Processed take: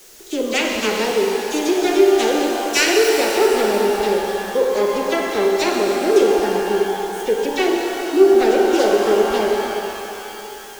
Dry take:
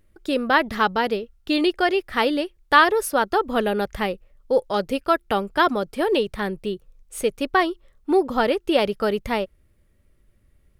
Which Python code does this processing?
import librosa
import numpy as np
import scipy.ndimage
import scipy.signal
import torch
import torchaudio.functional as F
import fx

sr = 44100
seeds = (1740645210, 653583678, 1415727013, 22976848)

y = fx.self_delay(x, sr, depth_ms=0.37)
y = fx.dispersion(y, sr, late='lows', ms=45.0, hz=2500.0)
y = fx.dmg_noise_colour(y, sr, seeds[0], colour='white', level_db=-43.0)
y = fx.graphic_eq_15(y, sr, hz=(100, 400, 1000, 6300), db=(-9, 12, -3, 6))
y = fx.rev_shimmer(y, sr, seeds[1], rt60_s=3.2, semitones=12, shimmer_db=-8, drr_db=-1.0)
y = y * 10.0 ** (-4.5 / 20.0)